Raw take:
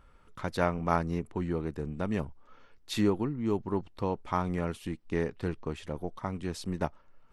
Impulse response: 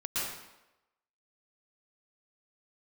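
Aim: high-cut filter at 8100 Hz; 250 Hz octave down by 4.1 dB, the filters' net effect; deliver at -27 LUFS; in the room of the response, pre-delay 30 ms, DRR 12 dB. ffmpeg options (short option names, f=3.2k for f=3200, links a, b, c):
-filter_complex "[0:a]lowpass=8.1k,equalizer=f=250:t=o:g=-6,asplit=2[a][b];[1:a]atrim=start_sample=2205,adelay=30[c];[b][c]afir=irnorm=-1:irlink=0,volume=-18.5dB[d];[a][d]amix=inputs=2:normalize=0,volume=8dB"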